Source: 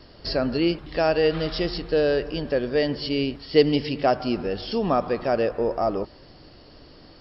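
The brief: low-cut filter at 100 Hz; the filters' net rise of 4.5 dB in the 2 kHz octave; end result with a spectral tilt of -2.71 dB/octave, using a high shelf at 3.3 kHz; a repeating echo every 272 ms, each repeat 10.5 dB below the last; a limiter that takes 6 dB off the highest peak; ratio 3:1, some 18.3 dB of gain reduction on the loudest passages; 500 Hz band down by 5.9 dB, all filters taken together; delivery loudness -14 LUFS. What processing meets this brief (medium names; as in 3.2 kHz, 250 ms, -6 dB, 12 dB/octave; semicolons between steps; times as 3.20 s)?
high-pass 100 Hz; peaking EQ 500 Hz -7.5 dB; peaking EQ 2 kHz +3.5 dB; treble shelf 3.3 kHz +8 dB; compression 3:1, threshold -41 dBFS; peak limiter -30 dBFS; feedback delay 272 ms, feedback 30%, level -10.5 dB; trim +27 dB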